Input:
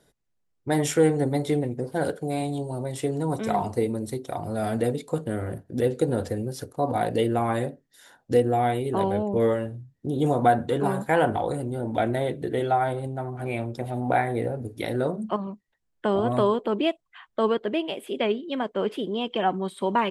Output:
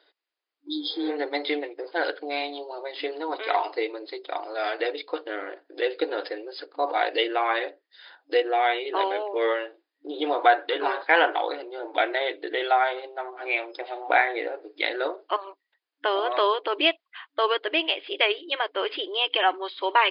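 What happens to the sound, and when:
0.69–1.09 spectral repair 350–3200 Hz
whole clip: dynamic EQ 2400 Hz, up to +5 dB, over -42 dBFS, Q 0.92; FFT band-pass 290–5100 Hz; tilt shelf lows -7.5 dB, about 680 Hz

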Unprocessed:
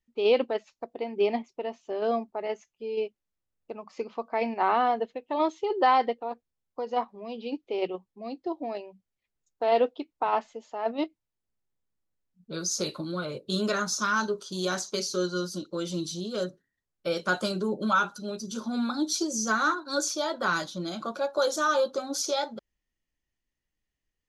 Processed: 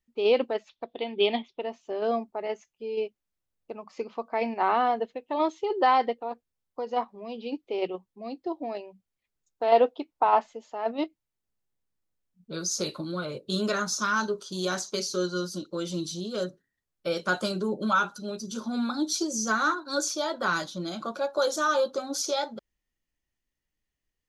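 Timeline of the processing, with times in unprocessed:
0.69–1.61 synth low-pass 3500 Hz, resonance Q 8.4
9.72–10.46 bell 830 Hz +5.5 dB 1.3 oct

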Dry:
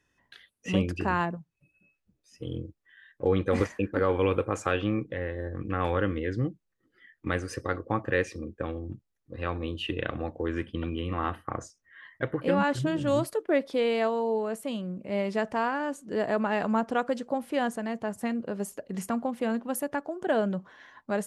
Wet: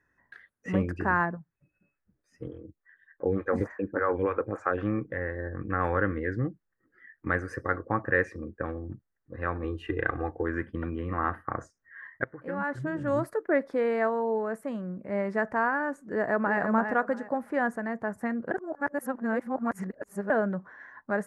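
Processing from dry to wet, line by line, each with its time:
2.47–4.78 photocell phaser 3.4 Hz
9.64–10.43 comb 2.5 ms
12.24–13.34 fade in, from -18 dB
16.1–16.6 echo throw 0.34 s, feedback 25%, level -6.5 dB
18.51–20.3 reverse
whole clip: resonant high shelf 2300 Hz -10 dB, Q 3; gain -1 dB

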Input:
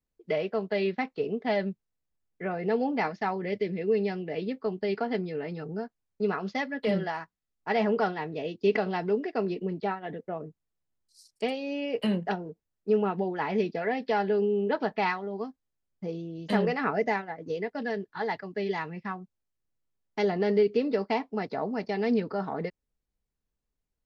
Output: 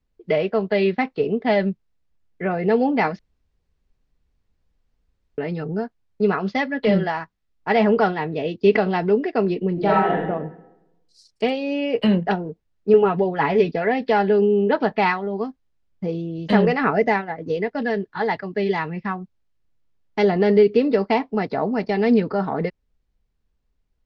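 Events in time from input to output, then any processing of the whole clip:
3.19–5.38 room tone
9.73–10.23 reverb throw, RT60 0.96 s, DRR -4.5 dB
12.93–13.72 comb 7.2 ms, depth 59%
whole clip: LPF 4700 Hz 12 dB/oct; low shelf 100 Hz +8 dB; gain +8 dB

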